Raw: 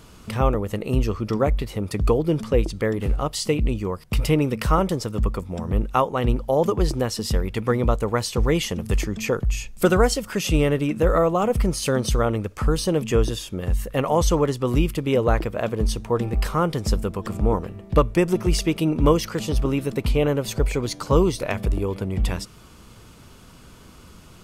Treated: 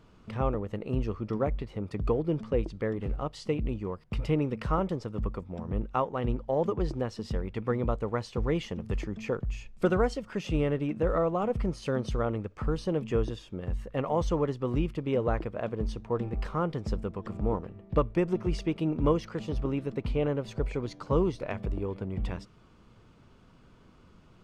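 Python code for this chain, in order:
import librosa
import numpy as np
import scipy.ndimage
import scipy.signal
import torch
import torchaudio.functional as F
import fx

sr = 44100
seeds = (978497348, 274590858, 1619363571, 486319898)

p1 = fx.peak_eq(x, sr, hz=61.0, db=-5.5, octaves=0.77)
p2 = np.sign(p1) * np.maximum(np.abs(p1) - 10.0 ** (-33.0 / 20.0), 0.0)
p3 = p1 + F.gain(torch.from_numpy(p2), -11.0).numpy()
p4 = fx.spacing_loss(p3, sr, db_at_10k=21)
y = F.gain(torch.from_numpy(p4), -8.5).numpy()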